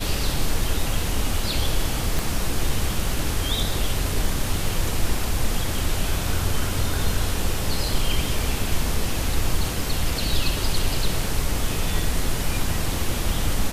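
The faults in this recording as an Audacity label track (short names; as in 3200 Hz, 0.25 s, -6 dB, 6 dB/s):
2.190000	2.190000	pop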